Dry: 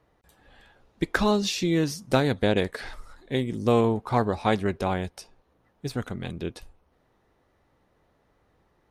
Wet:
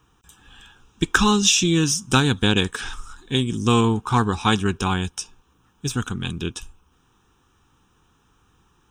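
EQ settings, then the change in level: high shelf 2600 Hz +11.5 dB; fixed phaser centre 3000 Hz, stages 8; +7.0 dB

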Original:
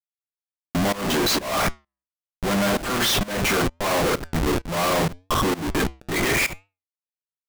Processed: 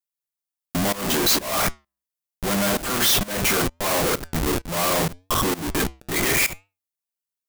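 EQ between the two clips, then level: high shelf 6400 Hz +10.5 dB; -1.5 dB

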